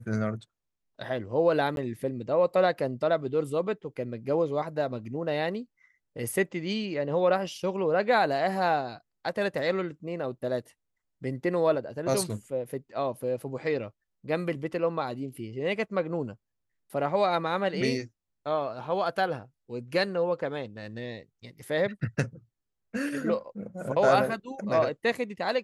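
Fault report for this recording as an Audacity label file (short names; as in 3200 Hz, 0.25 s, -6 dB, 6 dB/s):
1.760000	1.770000	gap 12 ms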